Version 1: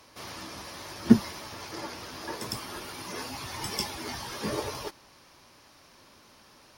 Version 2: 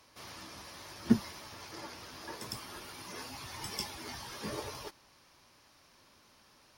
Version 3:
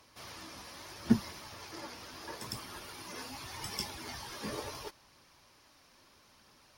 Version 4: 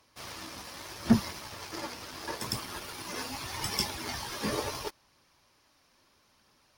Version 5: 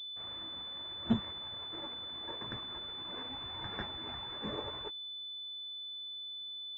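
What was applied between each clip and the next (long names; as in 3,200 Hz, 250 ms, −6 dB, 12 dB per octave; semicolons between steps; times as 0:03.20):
parametric band 380 Hz −2.5 dB 2.6 octaves; level −6 dB
phase shifter 0.77 Hz, delay 4.3 ms, feedback 23%
leveller curve on the samples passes 2
switching amplifier with a slow clock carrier 3,500 Hz; level −7.5 dB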